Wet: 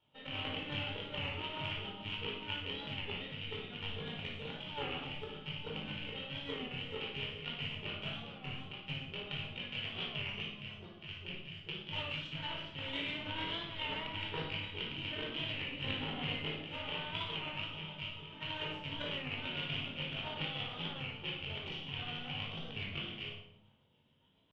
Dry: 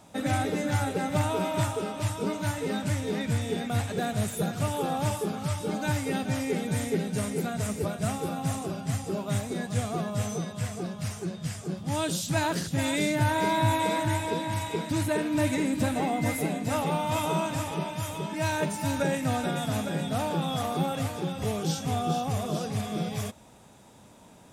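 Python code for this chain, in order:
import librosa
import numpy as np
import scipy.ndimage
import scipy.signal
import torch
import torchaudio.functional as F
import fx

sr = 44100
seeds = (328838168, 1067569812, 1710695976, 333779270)

p1 = fx.rattle_buzz(x, sr, strikes_db=-30.0, level_db=-21.0)
p2 = p1 * (1.0 - 0.58 / 2.0 + 0.58 / 2.0 * np.cos(2.0 * np.pi * 7.1 * (np.arange(len(p1)) / sr)))
p3 = fx.chorus_voices(p2, sr, voices=2, hz=0.53, base_ms=21, depth_ms=1.7, mix_pct=50)
p4 = fx.cheby_harmonics(p3, sr, harmonics=(3, 6), levels_db=(-10, -39), full_scale_db=-15.0)
p5 = fx.ladder_lowpass(p4, sr, hz=3100.0, resonance_pct=90)
p6 = fx.over_compress(p5, sr, threshold_db=-57.0, ratio=-1.0)
p7 = p6 + fx.room_flutter(p6, sr, wall_m=9.9, rt60_s=0.47, dry=0)
p8 = fx.room_shoebox(p7, sr, seeds[0], volume_m3=1000.0, walls='furnished', distance_m=4.5)
p9 = fx.record_warp(p8, sr, rpm=33.33, depth_cents=100.0)
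y = p9 * 10.0 ** (12.5 / 20.0)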